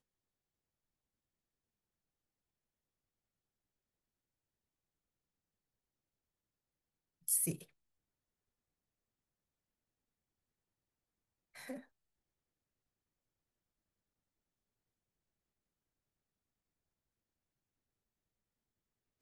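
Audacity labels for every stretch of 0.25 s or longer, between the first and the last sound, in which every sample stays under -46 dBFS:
7.630000	11.570000	silence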